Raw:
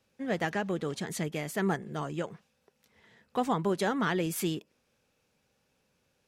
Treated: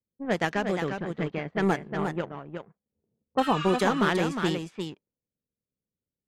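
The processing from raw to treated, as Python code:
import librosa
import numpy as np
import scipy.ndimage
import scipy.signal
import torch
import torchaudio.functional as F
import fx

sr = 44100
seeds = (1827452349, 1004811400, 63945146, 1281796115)

y = fx.env_lowpass(x, sr, base_hz=570.0, full_db=-26.5)
y = fx.power_curve(y, sr, exponent=1.4)
y = fx.env_lowpass(y, sr, base_hz=390.0, full_db=-28.5)
y = fx.spec_repair(y, sr, seeds[0], start_s=3.43, length_s=0.32, low_hz=1200.0, high_hz=8500.0, source='before')
y = y + 10.0 ** (-6.5 / 20.0) * np.pad(y, (int(358 * sr / 1000.0), 0))[:len(y)]
y = fx.record_warp(y, sr, rpm=45.0, depth_cents=100.0)
y = y * librosa.db_to_amplitude(7.0)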